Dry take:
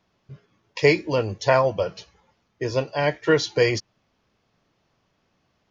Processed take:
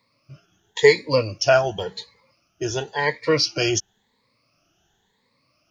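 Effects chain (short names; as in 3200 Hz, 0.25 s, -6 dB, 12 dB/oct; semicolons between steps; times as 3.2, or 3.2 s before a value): moving spectral ripple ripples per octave 0.97, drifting +0.94 Hz, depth 19 dB; high shelf 2900 Hz +10 dB; gain -4 dB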